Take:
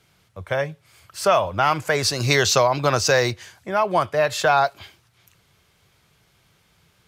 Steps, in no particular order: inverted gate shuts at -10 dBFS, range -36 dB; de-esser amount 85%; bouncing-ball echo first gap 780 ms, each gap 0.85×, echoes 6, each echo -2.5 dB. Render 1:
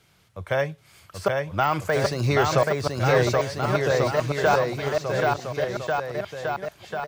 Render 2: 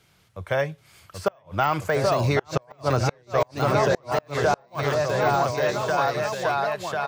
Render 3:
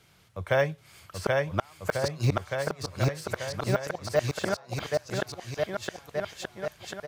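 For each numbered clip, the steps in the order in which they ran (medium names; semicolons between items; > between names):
de-esser > inverted gate > bouncing-ball echo; bouncing-ball echo > de-esser > inverted gate; inverted gate > bouncing-ball echo > de-esser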